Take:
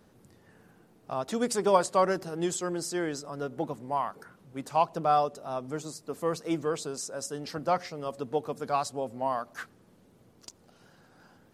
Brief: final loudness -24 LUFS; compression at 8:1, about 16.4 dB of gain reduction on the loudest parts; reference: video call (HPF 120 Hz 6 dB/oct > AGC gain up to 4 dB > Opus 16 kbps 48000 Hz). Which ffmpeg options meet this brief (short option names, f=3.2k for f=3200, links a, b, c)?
-af "acompressor=threshold=-35dB:ratio=8,highpass=f=120:p=1,dynaudnorm=m=4dB,volume=17.5dB" -ar 48000 -c:a libopus -b:a 16k